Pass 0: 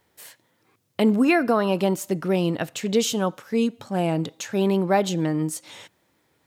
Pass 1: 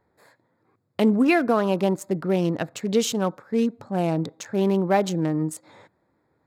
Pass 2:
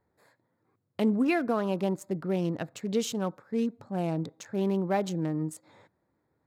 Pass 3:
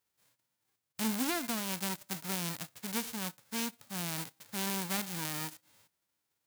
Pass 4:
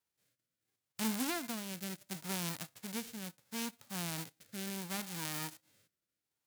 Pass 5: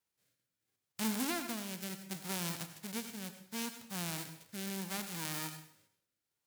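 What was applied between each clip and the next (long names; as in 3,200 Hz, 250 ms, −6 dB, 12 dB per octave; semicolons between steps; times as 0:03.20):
adaptive Wiener filter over 15 samples
low-shelf EQ 220 Hz +4 dB; level −8 dB
spectral envelope flattened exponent 0.1; level −7.5 dB
rotating-speaker cabinet horn 0.7 Hz; level −1.5 dB
dense smooth reverb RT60 0.58 s, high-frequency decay 0.9×, pre-delay 75 ms, DRR 9 dB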